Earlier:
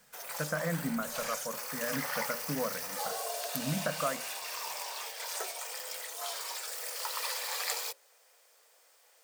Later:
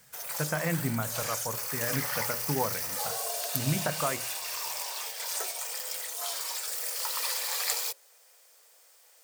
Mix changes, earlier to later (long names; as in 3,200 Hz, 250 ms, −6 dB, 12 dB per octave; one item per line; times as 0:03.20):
speech: remove phaser with its sweep stopped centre 560 Hz, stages 8
master: add high-shelf EQ 4,200 Hz +7 dB